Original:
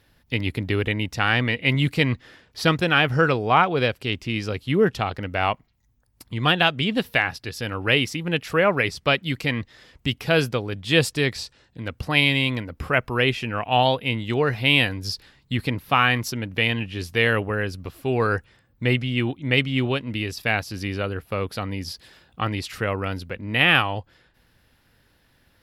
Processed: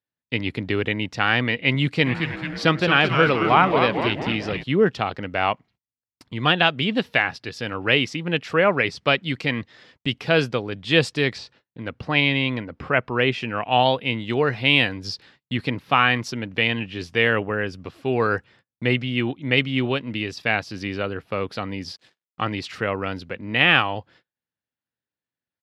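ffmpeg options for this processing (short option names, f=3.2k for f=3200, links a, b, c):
-filter_complex "[0:a]asplit=3[a][b][c];[a]afade=t=out:st=2.05:d=0.02[d];[b]asplit=9[e][f][g][h][i][j][k][l][m];[f]adelay=219,afreqshift=-150,volume=-6dB[n];[g]adelay=438,afreqshift=-300,volume=-10.7dB[o];[h]adelay=657,afreqshift=-450,volume=-15.5dB[p];[i]adelay=876,afreqshift=-600,volume=-20.2dB[q];[j]adelay=1095,afreqshift=-750,volume=-24.9dB[r];[k]adelay=1314,afreqshift=-900,volume=-29.7dB[s];[l]adelay=1533,afreqshift=-1050,volume=-34.4dB[t];[m]adelay=1752,afreqshift=-1200,volume=-39.1dB[u];[e][n][o][p][q][r][s][t][u]amix=inputs=9:normalize=0,afade=t=in:st=2.05:d=0.02,afade=t=out:st=4.62:d=0.02[v];[c]afade=t=in:st=4.62:d=0.02[w];[d][v][w]amix=inputs=3:normalize=0,asettb=1/sr,asplit=3[x][y][z];[x]atrim=end=11.384[aa];[y]atrim=start=11.38:end=13.32,asetpts=PTS-STARTPTS,afade=t=in:d=0.004:c=qsin,afade=t=out:st=1.936:d=0.004:c=qsin,aemphasis=mode=reproduction:type=50fm[ab];[z]atrim=start=13.316[ac];[aa][ab]acrossfade=d=0.004:c1=hsin:c2=qsin[ad];[ad][ac]acrossfade=d=0.004:c1=qsin:c2=hsin,asettb=1/sr,asplit=3[ae][af][ag];[ae]atrim=end=17.104[ah];[af]atrim=start=17.1:end=17.83,asetpts=PTS-STARTPTS,afade=t=in:d=0.004:c=qsin,afade=t=out:st=0.726:d=0.004:c=qsin,bandreject=f=4.1k:w=7.1[ai];[ag]atrim=start=17.826[aj];[ah][ai]acrossfade=d=0.004:c1=hsin:c2=qsin[ak];[ak][aj]acrossfade=d=0.004:c1=qsin:c2=hsin,asettb=1/sr,asplit=3[al][am][an];[al]atrim=end=21.914[ao];[am]atrim=start=21.91:end=22.41,asetpts=PTS-STARTPTS,afade=t=in:d=0.004:c=qsin,afade=t=out:st=0.496:d=0.004:c=qsin,aeval=exprs='sgn(val(0))*max(abs(val(0))-0.00251,0)':c=same[ap];[an]atrim=start=22.406[aq];[ao][ap]acrossfade=d=0.004:c1=hsin:c2=qsin[ar];[ar][aq]acrossfade=d=0.004:c1=qsin:c2=hsin,highpass=130,agate=range=-32dB:threshold=-52dB:ratio=16:detection=peak,lowpass=5.3k,volume=1dB"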